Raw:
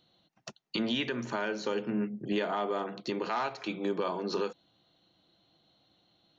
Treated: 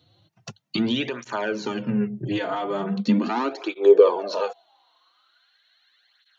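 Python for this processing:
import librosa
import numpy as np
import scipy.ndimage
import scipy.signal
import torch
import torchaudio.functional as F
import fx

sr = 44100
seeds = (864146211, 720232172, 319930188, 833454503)

y = fx.filter_sweep_highpass(x, sr, from_hz=100.0, to_hz=1700.0, start_s=2.22, end_s=5.57, q=7.2)
y = fx.flanger_cancel(y, sr, hz=0.4, depth_ms=5.3)
y = y * librosa.db_to_amplitude(7.5)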